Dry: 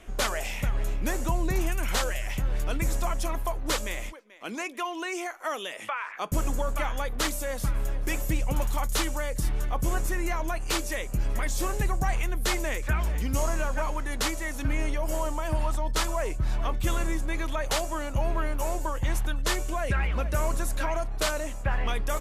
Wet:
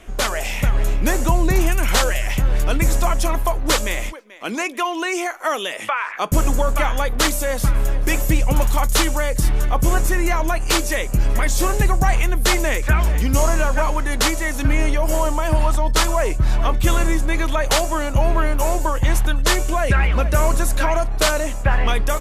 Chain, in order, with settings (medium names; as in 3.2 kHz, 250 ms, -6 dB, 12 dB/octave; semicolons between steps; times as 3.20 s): level rider gain up to 4 dB; trim +6 dB